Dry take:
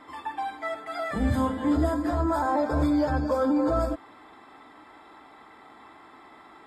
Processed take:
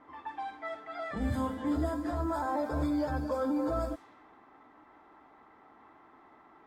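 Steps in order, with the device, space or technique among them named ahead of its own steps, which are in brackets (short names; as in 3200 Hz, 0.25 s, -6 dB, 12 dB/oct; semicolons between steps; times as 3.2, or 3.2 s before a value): cassette deck with a dynamic noise filter (white noise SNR 31 dB; low-pass opened by the level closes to 1500 Hz, open at -22 dBFS); gain -7 dB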